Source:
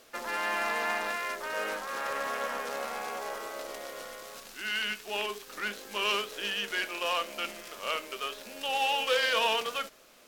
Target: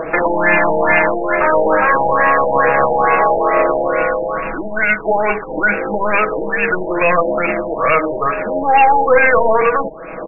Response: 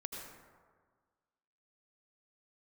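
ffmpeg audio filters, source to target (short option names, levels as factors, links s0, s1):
-filter_complex "[0:a]aeval=exprs='0.2*(cos(1*acos(clip(val(0)/0.2,-1,1)))-cos(1*PI/2))+0.0794*(cos(4*acos(clip(val(0)/0.2,-1,1)))-cos(4*PI/2))+0.0447*(cos(6*acos(clip(val(0)/0.2,-1,1)))-cos(6*PI/2))+0.0141*(cos(8*acos(clip(val(0)/0.2,-1,1)))-cos(8*PI/2))':c=same,acrossover=split=1200[s0][s1];[s0]acompressor=mode=upward:threshold=0.00708:ratio=2.5[s2];[s2][s1]amix=inputs=2:normalize=0,aecho=1:1:6.2:0.74,aresample=11025,asoftclip=type=hard:threshold=0.0841,aresample=44100,alimiter=level_in=22.4:limit=0.891:release=50:level=0:latency=1,afftfilt=real='re*lt(b*sr/1024,910*pow(2800/910,0.5+0.5*sin(2*PI*2.3*pts/sr)))':imag='im*lt(b*sr/1024,910*pow(2800/910,0.5+0.5*sin(2*PI*2.3*pts/sr)))':win_size=1024:overlap=0.75,volume=0.841"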